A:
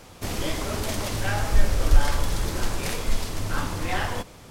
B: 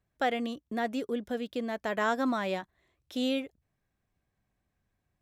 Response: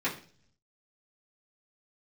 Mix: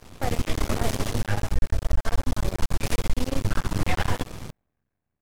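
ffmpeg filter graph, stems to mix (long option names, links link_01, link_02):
-filter_complex "[0:a]bass=frequency=250:gain=7,treble=frequency=4000:gain=-1,volume=1dB[link_01];[1:a]highpass=49,equalizer=frequency=6300:width=0.41:gain=-12,volume=1.5dB[link_02];[link_01][link_02]amix=inputs=2:normalize=0,dynaudnorm=framelen=100:gausssize=13:maxgain=11.5dB,aeval=exprs='max(val(0),0)':channel_layout=same,alimiter=limit=-11.5dB:level=0:latency=1:release=102"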